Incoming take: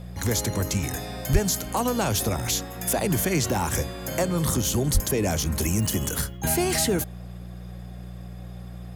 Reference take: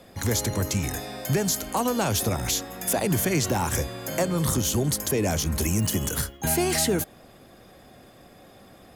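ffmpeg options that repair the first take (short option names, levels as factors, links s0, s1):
-filter_complex "[0:a]bandreject=f=59.7:t=h:w=4,bandreject=f=119.4:t=h:w=4,bandreject=f=179.1:t=h:w=4,asplit=3[s0][s1][s2];[s0]afade=t=out:st=1.32:d=0.02[s3];[s1]highpass=f=140:w=0.5412,highpass=f=140:w=1.3066,afade=t=in:st=1.32:d=0.02,afade=t=out:st=1.44:d=0.02[s4];[s2]afade=t=in:st=1.44:d=0.02[s5];[s3][s4][s5]amix=inputs=3:normalize=0,asplit=3[s6][s7][s8];[s6]afade=t=out:st=4.93:d=0.02[s9];[s7]highpass=f=140:w=0.5412,highpass=f=140:w=1.3066,afade=t=in:st=4.93:d=0.02,afade=t=out:st=5.05:d=0.02[s10];[s8]afade=t=in:st=5.05:d=0.02[s11];[s9][s10][s11]amix=inputs=3:normalize=0"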